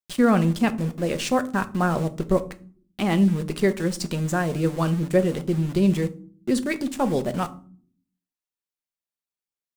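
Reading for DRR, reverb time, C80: 8.5 dB, 0.45 s, 23.0 dB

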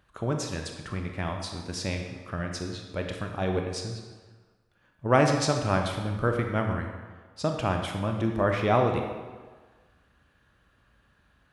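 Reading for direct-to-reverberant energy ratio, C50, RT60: 3.0 dB, 4.5 dB, 1.5 s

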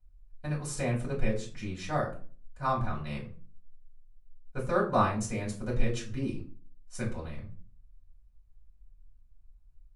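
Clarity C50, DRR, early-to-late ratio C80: 9.5 dB, −6.0 dB, 14.5 dB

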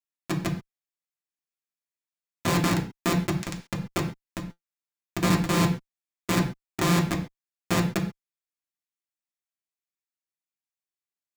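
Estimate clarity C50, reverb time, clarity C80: 10.5 dB, non-exponential decay, 14.0 dB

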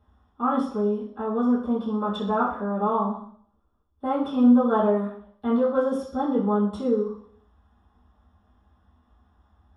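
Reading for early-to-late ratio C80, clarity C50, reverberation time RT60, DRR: 9.0 dB, 5.0 dB, 0.60 s, −10.5 dB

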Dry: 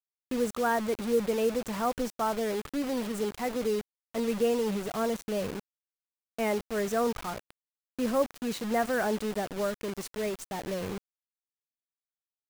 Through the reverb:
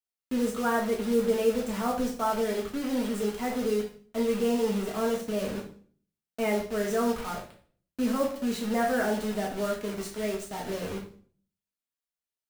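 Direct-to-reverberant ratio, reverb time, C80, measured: −2.5 dB, 0.50 s, 12.0 dB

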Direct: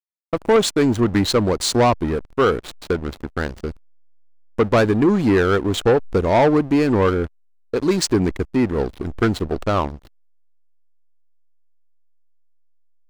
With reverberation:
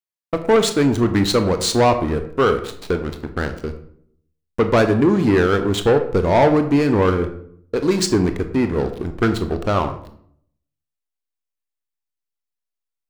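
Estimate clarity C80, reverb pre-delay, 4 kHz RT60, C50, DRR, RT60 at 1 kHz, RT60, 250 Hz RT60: 13.5 dB, 20 ms, 0.40 s, 11.0 dB, 7.5 dB, 0.60 s, 0.65 s, 0.80 s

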